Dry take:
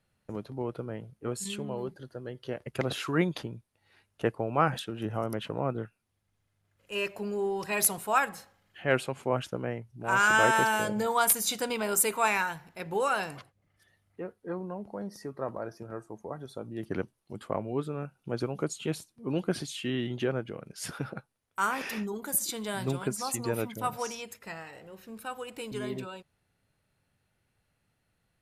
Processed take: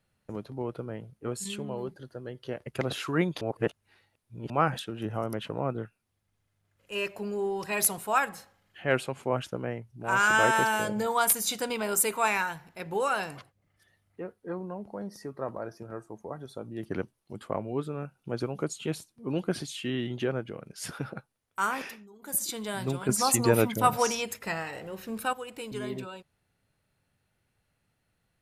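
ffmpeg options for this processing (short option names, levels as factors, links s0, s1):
-filter_complex "[0:a]asplit=7[s0][s1][s2][s3][s4][s5][s6];[s0]atrim=end=3.412[s7];[s1]atrim=start=3.408:end=4.502,asetpts=PTS-STARTPTS,areverse[s8];[s2]atrim=start=4.498:end=21.97,asetpts=PTS-STARTPTS,afade=t=out:st=17.232:d=0.24:c=qsin:silence=0.133352[s9];[s3]atrim=start=21.97:end=22.19,asetpts=PTS-STARTPTS,volume=0.133[s10];[s4]atrim=start=22.19:end=23.092,asetpts=PTS-STARTPTS,afade=t=in:d=0.24:c=qsin:silence=0.133352[s11];[s5]atrim=start=23.088:end=25.332,asetpts=PTS-STARTPTS,volume=2.66[s12];[s6]atrim=start=25.328[s13];[s7][s8]acrossfade=d=0.004:c1=hsin:c2=hsin[s14];[s9][s10][s11]concat=n=3:v=0:a=1[s15];[s14][s15]acrossfade=d=0.004:c1=hsin:c2=hsin[s16];[s16][s12]acrossfade=d=0.004:c1=hsin:c2=hsin[s17];[s17][s13]acrossfade=d=0.004:c1=hsin:c2=hsin"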